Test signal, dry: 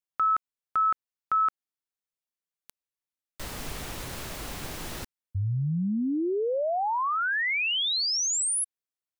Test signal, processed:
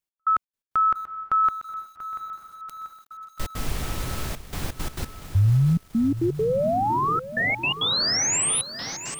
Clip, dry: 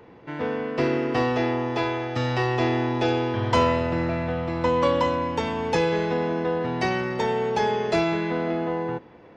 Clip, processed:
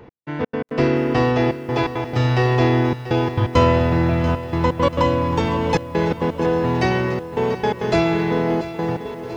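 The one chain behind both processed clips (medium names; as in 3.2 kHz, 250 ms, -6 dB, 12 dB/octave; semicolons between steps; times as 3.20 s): bass shelf 170 Hz +9 dB; on a send: echo that smears into a reverb 836 ms, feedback 61%, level -14 dB; on the sum: trance gate "x..xx.x.xxxxxxxx" 169 bpm -60 dB; bit-crushed delay 687 ms, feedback 55%, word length 8-bit, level -13 dB; trim +3.5 dB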